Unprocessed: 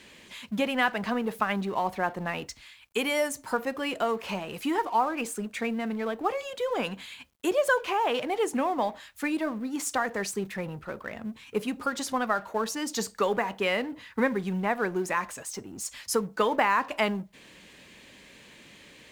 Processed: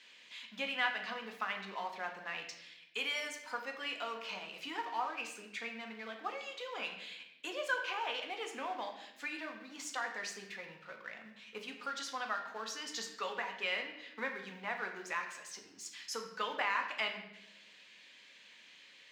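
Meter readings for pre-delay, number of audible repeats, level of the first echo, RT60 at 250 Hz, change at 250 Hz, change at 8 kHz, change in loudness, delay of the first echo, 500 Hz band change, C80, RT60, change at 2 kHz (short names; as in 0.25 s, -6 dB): 4 ms, none, none, 1.4 s, -20.0 dB, -11.0 dB, -10.5 dB, none, -16.0 dB, 9.5 dB, 0.90 s, -6.0 dB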